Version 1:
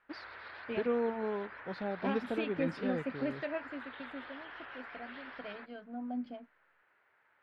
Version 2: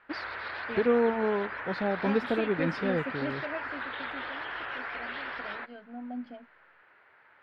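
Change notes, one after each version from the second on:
first voice +7.5 dB; background +11.0 dB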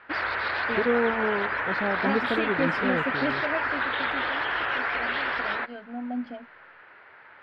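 second voice +6.5 dB; background +9.5 dB

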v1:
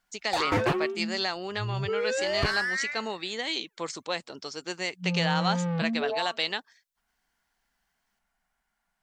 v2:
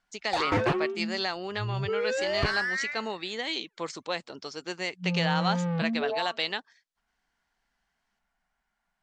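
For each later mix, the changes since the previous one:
master: add distance through air 57 m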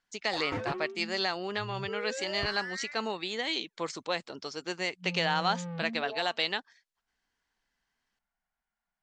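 background -9.5 dB

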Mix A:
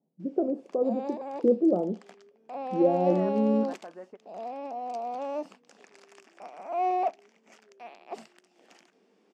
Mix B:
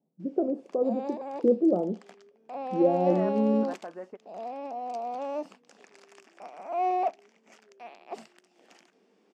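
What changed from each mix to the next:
second voice +3.5 dB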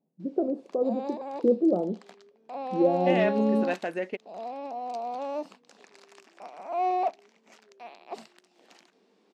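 second voice: remove four-pole ladder low-pass 1.3 kHz, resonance 60%; background: add graphic EQ with 31 bands 1 kHz +3 dB, 4 kHz +8 dB, 12.5 kHz +4 dB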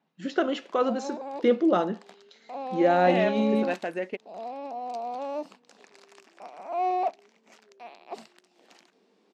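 first voice: remove inverse Chebyshev low-pass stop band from 2.7 kHz, stop band 70 dB

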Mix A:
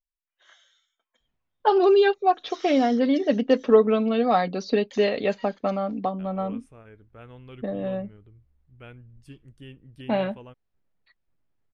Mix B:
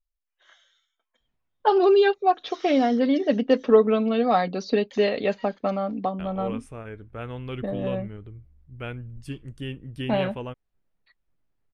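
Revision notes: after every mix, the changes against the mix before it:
second voice +10.5 dB; background: add distance through air 54 m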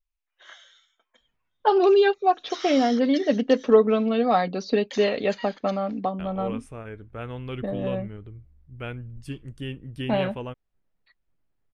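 background +9.5 dB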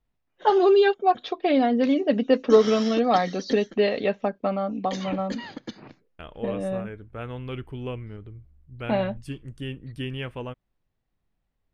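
first voice: entry -1.20 s; background: remove high-pass 1.2 kHz 12 dB/octave

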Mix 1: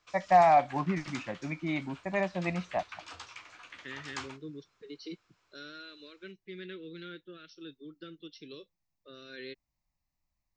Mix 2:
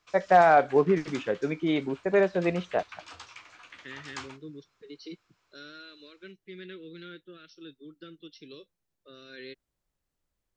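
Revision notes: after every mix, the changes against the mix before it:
first voice: remove static phaser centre 2.2 kHz, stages 8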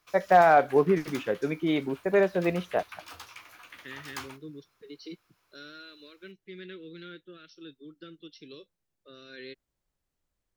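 background: remove elliptic low-pass 7.9 kHz, stop band 40 dB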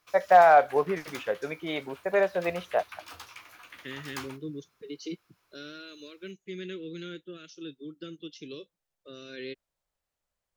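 first voice: add resonant low shelf 430 Hz -8 dB, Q 1.5; second voice: remove rippled Chebyshev low-pass 5.7 kHz, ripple 6 dB

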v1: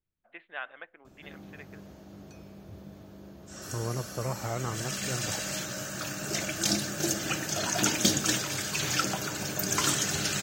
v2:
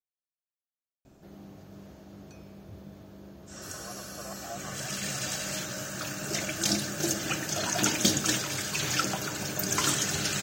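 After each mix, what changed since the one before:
first voice: muted; second voice: add vowel filter a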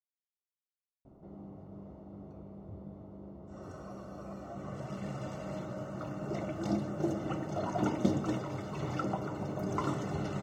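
speech -8.0 dB; background: add Savitzky-Golay filter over 65 samples

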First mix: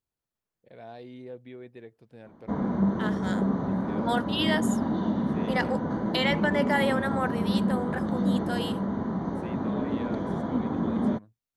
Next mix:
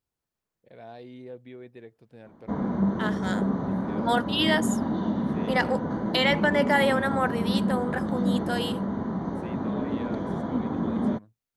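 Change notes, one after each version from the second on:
second voice +3.5 dB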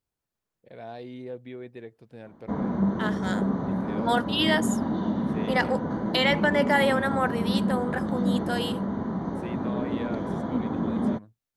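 first voice +4.0 dB

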